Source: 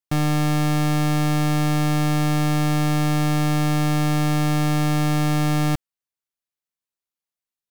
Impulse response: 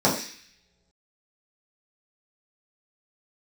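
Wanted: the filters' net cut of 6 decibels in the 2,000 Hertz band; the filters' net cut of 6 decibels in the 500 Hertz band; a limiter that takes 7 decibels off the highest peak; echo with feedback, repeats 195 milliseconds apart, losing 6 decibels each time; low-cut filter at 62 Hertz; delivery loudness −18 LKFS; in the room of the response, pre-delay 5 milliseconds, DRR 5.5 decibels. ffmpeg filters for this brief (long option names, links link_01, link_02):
-filter_complex "[0:a]highpass=62,equalizer=frequency=500:width_type=o:gain=-7.5,equalizer=frequency=2000:width_type=o:gain=-7,alimiter=limit=-20.5dB:level=0:latency=1,aecho=1:1:195|390|585|780|975|1170:0.501|0.251|0.125|0.0626|0.0313|0.0157,asplit=2[link_01][link_02];[1:a]atrim=start_sample=2205,adelay=5[link_03];[link_02][link_03]afir=irnorm=-1:irlink=0,volume=-23dB[link_04];[link_01][link_04]amix=inputs=2:normalize=0,volume=9dB"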